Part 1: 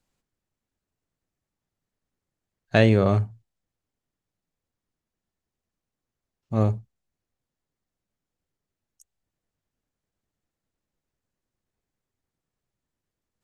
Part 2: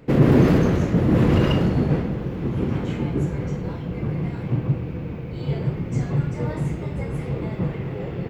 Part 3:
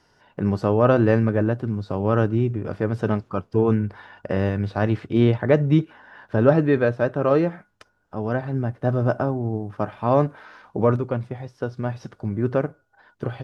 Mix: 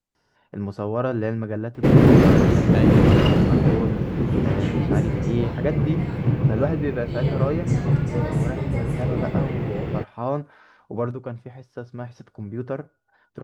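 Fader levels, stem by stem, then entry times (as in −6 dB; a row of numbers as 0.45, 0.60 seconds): −10.0, +2.5, −7.0 decibels; 0.00, 1.75, 0.15 seconds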